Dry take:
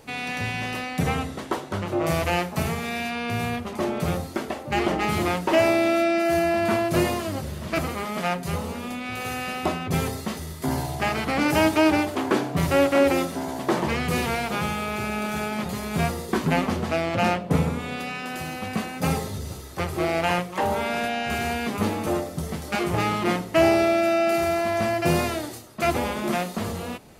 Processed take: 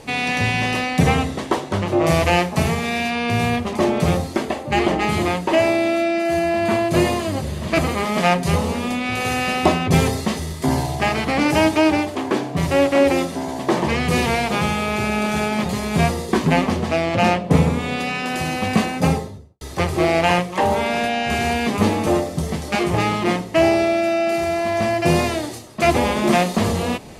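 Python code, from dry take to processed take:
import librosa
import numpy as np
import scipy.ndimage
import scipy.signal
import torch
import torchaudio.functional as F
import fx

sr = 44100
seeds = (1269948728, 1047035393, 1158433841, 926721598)

y = fx.notch(x, sr, hz=5500.0, q=12.0, at=(4.42, 8.0))
y = fx.studio_fade_out(y, sr, start_s=18.77, length_s=0.84)
y = scipy.signal.sosfilt(scipy.signal.butter(2, 10000.0, 'lowpass', fs=sr, output='sos'), y)
y = fx.peak_eq(y, sr, hz=1400.0, db=-7.0, octaves=0.24)
y = fx.rider(y, sr, range_db=10, speed_s=2.0)
y = F.gain(torch.from_numpy(y), 5.0).numpy()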